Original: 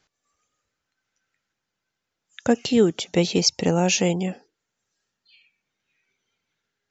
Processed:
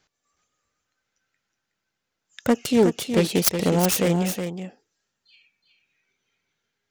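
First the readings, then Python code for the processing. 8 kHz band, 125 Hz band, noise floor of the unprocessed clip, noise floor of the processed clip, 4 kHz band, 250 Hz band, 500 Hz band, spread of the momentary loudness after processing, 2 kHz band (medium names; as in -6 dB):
no reading, +1.0 dB, -82 dBFS, -81 dBFS, -4.0 dB, +0.5 dB, 0.0 dB, 11 LU, -1.0 dB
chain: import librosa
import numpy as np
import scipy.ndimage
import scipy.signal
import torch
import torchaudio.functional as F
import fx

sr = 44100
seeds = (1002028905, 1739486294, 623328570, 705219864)

y = fx.self_delay(x, sr, depth_ms=0.26)
y = y + 10.0 ** (-7.5 / 20.0) * np.pad(y, (int(368 * sr / 1000.0), 0))[:len(y)]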